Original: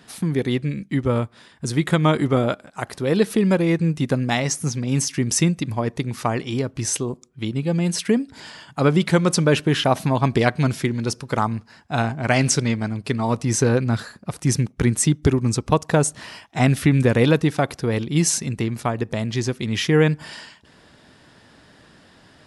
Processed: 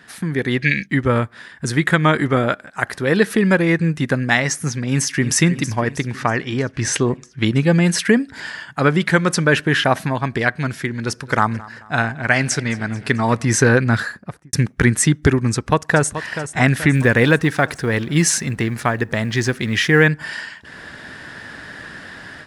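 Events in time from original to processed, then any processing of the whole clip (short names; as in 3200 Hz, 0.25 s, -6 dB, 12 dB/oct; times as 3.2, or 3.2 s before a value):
0.62–0.86 spectral gain 1600–6600 Hz +16 dB
4.89–5.34 echo throw 0.32 s, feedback 65%, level -12 dB
6.12–7.43 air absorption 57 m
11.01–13.45 feedback echo 0.219 s, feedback 44%, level -20.5 dB
14.03–14.53 studio fade out
15.52–16.1 echo throw 0.43 s, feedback 50%, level -11 dB
16.95–20.08 G.711 law mismatch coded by mu
whole clip: bell 1700 Hz +12 dB 0.69 oct; AGC; gain -1 dB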